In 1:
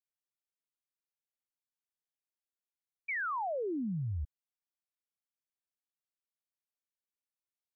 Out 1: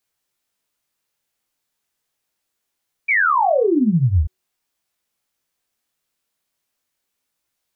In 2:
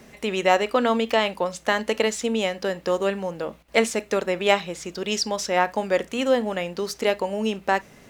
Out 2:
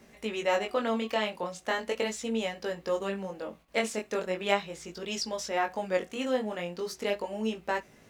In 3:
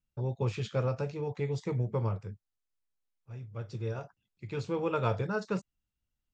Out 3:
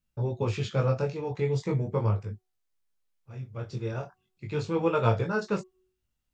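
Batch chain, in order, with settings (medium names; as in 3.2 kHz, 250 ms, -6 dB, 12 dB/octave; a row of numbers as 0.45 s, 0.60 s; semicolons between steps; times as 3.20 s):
de-hum 371.8 Hz, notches 3; chorus 0.39 Hz, delay 17.5 ms, depth 6.1 ms; peak normalisation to -9 dBFS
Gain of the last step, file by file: +21.5 dB, -5.0 dB, +7.5 dB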